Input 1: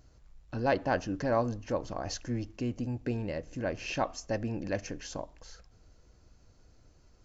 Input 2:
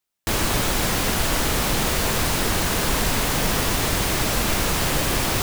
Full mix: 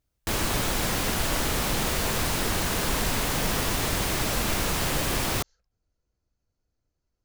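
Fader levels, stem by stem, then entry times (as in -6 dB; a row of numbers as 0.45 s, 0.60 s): -19.5 dB, -4.5 dB; 0.00 s, 0.00 s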